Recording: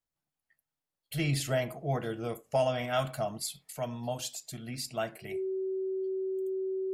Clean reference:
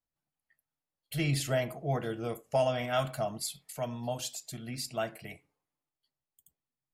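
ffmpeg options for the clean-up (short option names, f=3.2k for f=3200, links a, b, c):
-af "bandreject=f=380:w=30,asetnsamples=n=441:p=0,asendcmd='6.16 volume volume 5dB',volume=0dB"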